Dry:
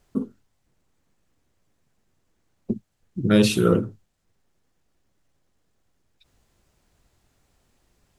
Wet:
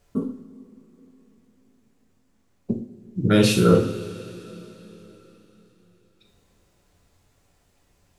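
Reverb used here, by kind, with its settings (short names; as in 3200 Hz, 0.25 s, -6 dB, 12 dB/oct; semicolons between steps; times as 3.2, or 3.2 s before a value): two-slope reverb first 0.46 s, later 4.1 s, from -19 dB, DRR 0.5 dB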